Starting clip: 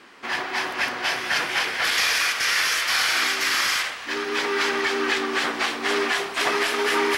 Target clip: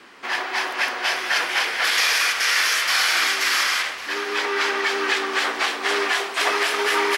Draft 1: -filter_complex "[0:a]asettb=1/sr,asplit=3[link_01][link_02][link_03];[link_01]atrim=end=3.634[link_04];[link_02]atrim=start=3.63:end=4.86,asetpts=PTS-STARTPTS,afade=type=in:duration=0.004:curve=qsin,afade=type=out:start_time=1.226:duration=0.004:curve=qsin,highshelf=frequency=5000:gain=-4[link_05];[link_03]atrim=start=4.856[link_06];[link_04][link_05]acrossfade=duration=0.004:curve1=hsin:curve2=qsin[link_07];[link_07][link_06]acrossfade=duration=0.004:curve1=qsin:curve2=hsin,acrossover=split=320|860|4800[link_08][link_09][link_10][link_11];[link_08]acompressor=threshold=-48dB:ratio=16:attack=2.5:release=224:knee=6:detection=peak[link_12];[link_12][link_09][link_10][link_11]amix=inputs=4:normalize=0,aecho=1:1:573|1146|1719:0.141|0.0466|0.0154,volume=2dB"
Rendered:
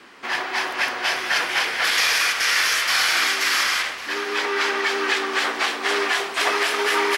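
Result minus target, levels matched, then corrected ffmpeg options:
downward compressor: peak gain reduction −7.5 dB
-filter_complex "[0:a]asettb=1/sr,asplit=3[link_01][link_02][link_03];[link_01]atrim=end=3.634[link_04];[link_02]atrim=start=3.63:end=4.86,asetpts=PTS-STARTPTS,afade=type=in:duration=0.004:curve=qsin,afade=type=out:start_time=1.226:duration=0.004:curve=qsin,highshelf=frequency=5000:gain=-4[link_05];[link_03]atrim=start=4.856[link_06];[link_04][link_05]acrossfade=duration=0.004:curve1=hsin:curve2=qsin[link_07];[link_07][link_06]acrossfade=duration=0.004:curve1=qsin:curve2=hsin,acrossover=split=320|860|4800[link_08][link_09][link_10][link_11];[link_08]acompressor=threshold=-56dB:ratio=16:attack=2.5:release=224:knee=6:detection=peak[link_12];[link_12][link_09][link_10][link_11]amix=inputs=4:normalize=0,aecho=1:1:573|1146|1719:0.141|0.0466|0.0154,volume=2dB"

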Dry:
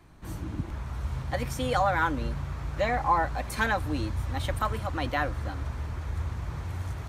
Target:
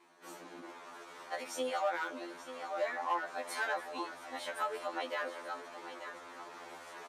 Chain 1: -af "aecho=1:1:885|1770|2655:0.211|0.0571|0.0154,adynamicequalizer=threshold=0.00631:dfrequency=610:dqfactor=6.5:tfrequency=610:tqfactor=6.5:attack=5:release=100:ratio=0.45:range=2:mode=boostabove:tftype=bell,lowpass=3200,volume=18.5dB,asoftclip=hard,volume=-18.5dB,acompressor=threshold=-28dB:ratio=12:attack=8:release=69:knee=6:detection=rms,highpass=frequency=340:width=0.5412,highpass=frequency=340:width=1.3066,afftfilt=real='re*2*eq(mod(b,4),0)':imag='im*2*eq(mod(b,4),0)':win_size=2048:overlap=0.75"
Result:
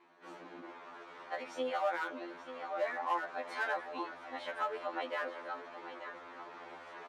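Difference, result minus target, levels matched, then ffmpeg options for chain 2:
8,000 Hz band −13.0 dB
-af "aecho=1:1:885|1770|2655:0.211|0.0571|0.0154,adynamicequalizer=threshold=0.00631:dfrequency=610:dqfactor=6.5:tfrequency=610:tqfactor=6.5:attack=5:release=100:ratio=0.45:range=2:mode=boostabove:tftype=bell,lowpass=11000,volume=18.5dB,asoftclip=hard,volume=-18.5dB,acompressor=threshold=-28dB:ratio=12:attack=8:release=69:knee=6:detection=rms,highpass=frequency=340:width=0.5412,highpass=frequency=340:width=1.3066,afftfilt=real='re*2*eq(mod(b,4),0)':imag='im*2*eq(mod(b,4),0)':win_size=2048:overlap=0.75"

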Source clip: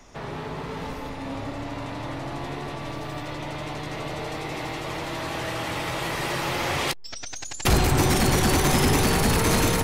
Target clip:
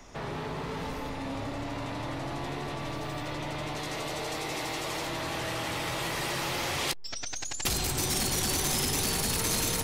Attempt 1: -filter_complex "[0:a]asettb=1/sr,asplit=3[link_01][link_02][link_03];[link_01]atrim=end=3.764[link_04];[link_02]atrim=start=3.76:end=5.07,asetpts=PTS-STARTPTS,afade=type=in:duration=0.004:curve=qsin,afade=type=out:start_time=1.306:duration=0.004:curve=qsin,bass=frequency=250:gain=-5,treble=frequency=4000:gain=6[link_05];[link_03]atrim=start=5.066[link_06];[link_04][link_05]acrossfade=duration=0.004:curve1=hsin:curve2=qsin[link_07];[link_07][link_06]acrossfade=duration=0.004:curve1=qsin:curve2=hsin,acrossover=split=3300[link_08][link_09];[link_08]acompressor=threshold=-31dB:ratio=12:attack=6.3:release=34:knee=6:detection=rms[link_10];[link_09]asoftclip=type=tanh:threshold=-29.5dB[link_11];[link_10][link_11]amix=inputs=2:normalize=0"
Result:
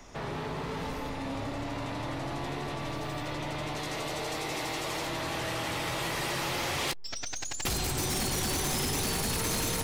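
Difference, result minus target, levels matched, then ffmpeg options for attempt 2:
soft clipping: distortion +12 dB
-filter_complex "[0:a]asettb=1/sr,asplit=3[link_01][link_02][link_03];[link_01]atrim=end=3.764[link_04];[link_02]atrim=start=3.76:end=5.07,asetpts=PTS-STARTPTS,afade=type=in:duration=0.004:curve=qsin,afade=type=out:start_time=1.306:duration=0.004:curve=qsin,bass=frequency=250:gain=-5,treble=frequency=4000:gain=6[link_05];[link_03]atrim=start=5.066[link_06];[link_04][link_05]acrossfade=duration=0.004:curve1=hsin:curve2=qsin[link_07];[link_07][link_06]acrossfade=duration=0.004:curve1=qsin:curve2=hsin,acrossover=split=3300[link_08][link_09];[link_08]acompressor=threshold=-31dB:ratio=12:attack=6.3:release=34:knee=6:detection=rms[link_10];[link_09]asoftclip=type=tanh:threshold=-19.5dB[link_11];[link_10][link_11]amix=inputs=2:normalize=0"

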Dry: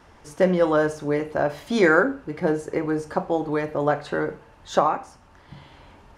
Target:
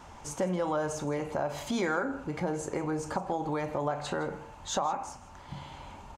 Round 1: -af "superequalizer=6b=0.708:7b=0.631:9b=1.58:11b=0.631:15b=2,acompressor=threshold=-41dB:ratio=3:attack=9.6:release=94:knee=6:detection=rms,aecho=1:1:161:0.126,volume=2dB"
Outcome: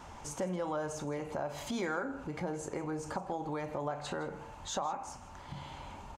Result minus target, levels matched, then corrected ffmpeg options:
downward compressor: peak gain reduction +5.5 dB
-af "superequalizer=6b=0.708:7b=0.631:9b=1.58:11b=0.631:15b=2,acompressor=threshold=-33dB:ratio=3:attack=9.6:release=94:knee=6:detection=rms,aecho=1:1:161:0.126,volume=2dB"

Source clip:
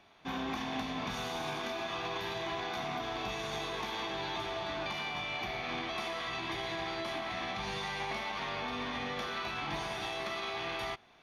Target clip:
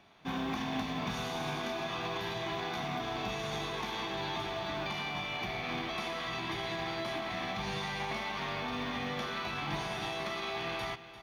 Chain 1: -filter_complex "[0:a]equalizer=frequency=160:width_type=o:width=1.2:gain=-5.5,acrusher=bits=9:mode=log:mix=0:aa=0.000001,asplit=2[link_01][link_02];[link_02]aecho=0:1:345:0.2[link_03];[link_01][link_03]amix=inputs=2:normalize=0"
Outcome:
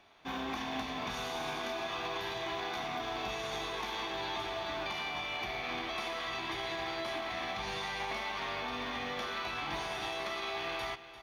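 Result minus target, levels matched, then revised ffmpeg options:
125 Hz band −7.5 dB
-filter_complex "[0:a]equalizer=frequency=160:width_type=o:width=1.2:gain=5.5,acrusher=bits=9:mode=log:mix=0:aa=0.000001,asplit=2[link_01][link_02];[link_02]aecho=0:1:345:0.2[link_03];[link_01][link_03]amix=inputs=2:normalize=0"

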